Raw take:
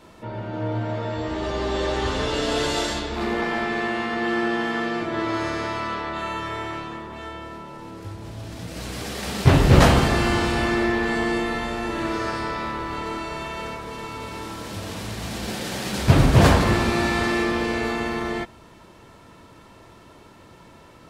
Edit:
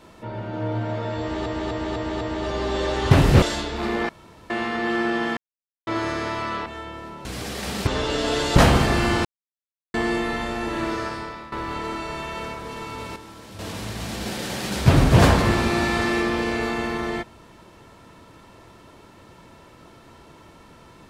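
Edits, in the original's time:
0:01.21–0:01.46: repeat, 5 plays
0:02.11–0:02.80: swap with 0:09.47–0:09.78
0:03.47–0:03.88: fill with room tone
0:04.75–0:05.25: silence
0:06.04–0:07.14: remove
0:07.73–0:08.85: remove
0:10.47–0:11.16: silence
0:12.10–0:12.74: fade out linear, to −14 dB
0:14.38–0:14.81: clip gain −8.5 dB

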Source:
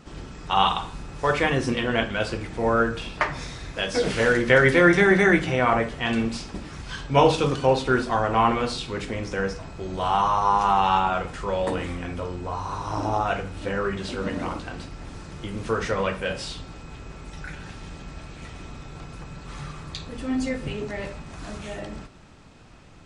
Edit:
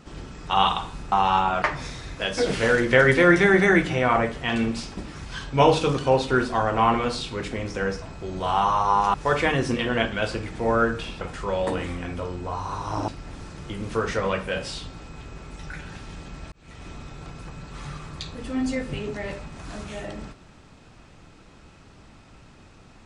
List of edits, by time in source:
0:01.12–0:03.19: swap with 0:10.71–0:11.21
0:13.08–0:14.82: remove
0:18.26–0:18.62: fade in

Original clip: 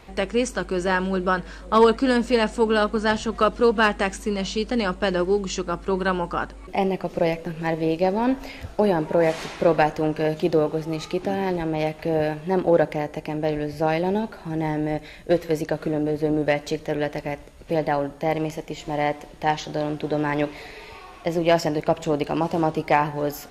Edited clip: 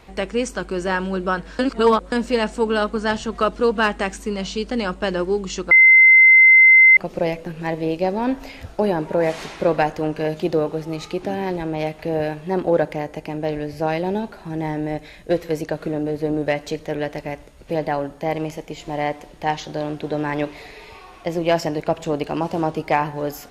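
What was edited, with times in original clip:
0:01.59–0:02.12: reverse
0:05.71–0:06.97: beep over 2,070 Hz −6.5 dBFS

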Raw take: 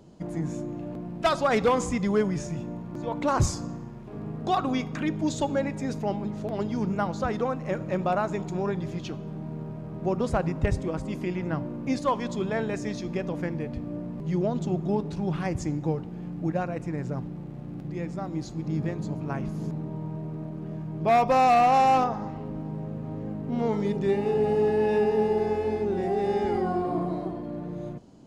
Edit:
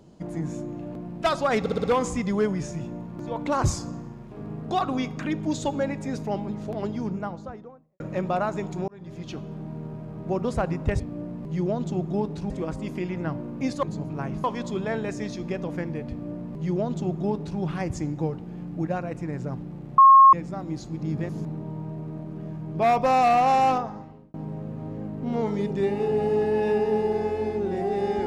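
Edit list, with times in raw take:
0:01.60: stutter 0.06 s, 5 plays
0:06.47–0:07.76: fade out and dull
0:08.64–0:09.14: fade in
0:13.75–0:15.25: duplicate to 0:10.76
0:17.63–0:17.98: beep over 1,080 Hz −8.5 dBFS
0:18.94–0:19.55: move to 0:12.09
0:21.94–0:22.60: fade out

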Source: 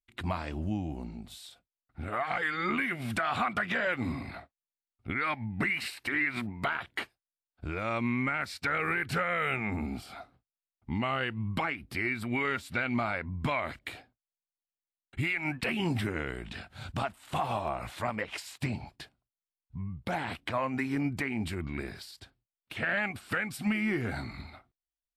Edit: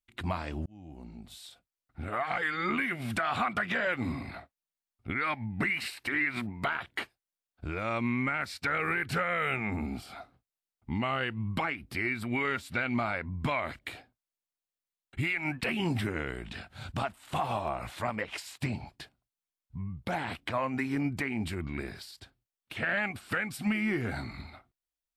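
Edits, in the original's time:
0:00.66–0:01.46: fade in

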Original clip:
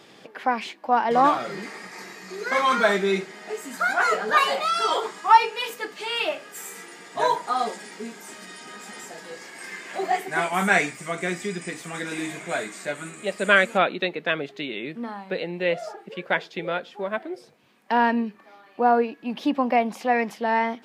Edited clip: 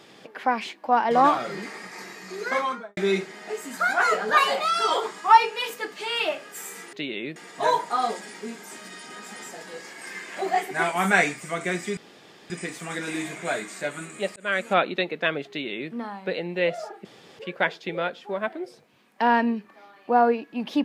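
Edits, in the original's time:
0:02.42–0:02.97: fade out and dull
0:11.54: splice in room tone 0.53 s
0:13.40–0:13.83: fade in
0:14.53–0:14.96: duplicate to 0:06.93
0:16.09: splice in room tone 0.34 s

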